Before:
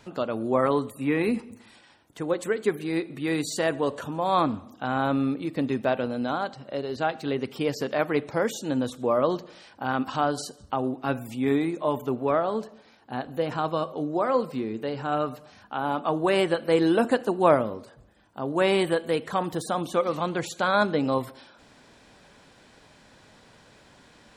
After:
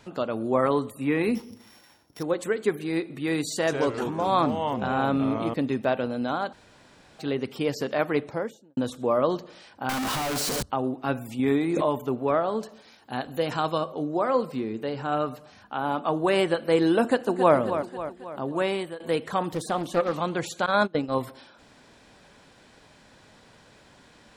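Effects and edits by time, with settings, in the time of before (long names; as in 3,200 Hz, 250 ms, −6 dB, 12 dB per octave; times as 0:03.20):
0:01.35–0:02.23: samples sorted by size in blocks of 8 samples
0:03.54–0:05.54: delay with pitch and tempo change per echo 133 ms, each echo −3 semitones, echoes 3, each echo −6 dB
0:06.53–0:07.19: fill with room tone
0:08.13–0:08.77: fade out and dull
0:09.89–0:10.63: sign of each sample alone
0:11.39–0:12.05: background raised ahead of every attack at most 21 dB per second
0:12.63–0:13.78: high-shelf EQ 2,600 Hz +9 dB
0:17.01–0:17.55: delay throw 270 ms, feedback 55%, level −9.5 dB
0:18.40–0:19.00: fade out, to −17 dB
0:19.51–0:20.14: highs frequency-modulated by the lows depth 0.36 ms
0:20.66–0:21.15: noise gate −25 dBFS, range −23 dB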